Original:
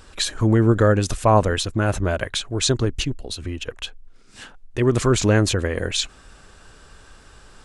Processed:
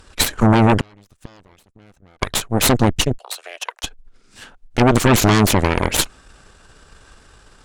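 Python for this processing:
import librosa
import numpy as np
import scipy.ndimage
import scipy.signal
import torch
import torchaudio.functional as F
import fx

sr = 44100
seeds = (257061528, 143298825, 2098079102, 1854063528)

y = fx.cheby_harmonics(x, sr, harmonics=(8,), levels_db=(-7,), full_scale_db=-3.5)
y = fx.gate_flip(y, sr, shuts_db=-10.0, range_db=-35, at=(0.8, 2.22))
y = fx.cheby2_highpass(y, sr, hz=230.0, order=4, stop_db=50, at=(3.18, 3.84))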